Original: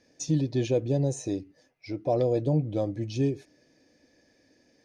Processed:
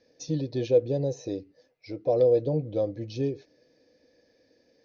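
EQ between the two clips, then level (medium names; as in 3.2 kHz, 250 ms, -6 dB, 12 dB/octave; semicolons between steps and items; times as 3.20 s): steep low-pass 6.2 kHz 72 dB/octave; peaking EQ 490 Hz +11.5 dB 0.41 oct; peaking EQ 4.2 kHz +5.5 dB 0.39 oct; -4.5 dB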